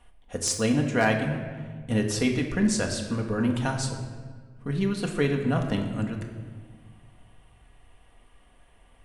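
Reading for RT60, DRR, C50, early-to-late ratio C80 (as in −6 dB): 1.6 s, 2.0 dB, 6.5 dB, 8.5 dB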